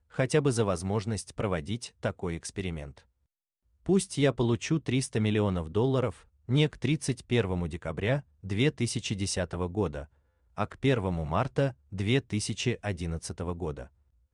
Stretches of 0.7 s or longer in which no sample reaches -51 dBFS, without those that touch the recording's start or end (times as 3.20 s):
3.01–3.86 s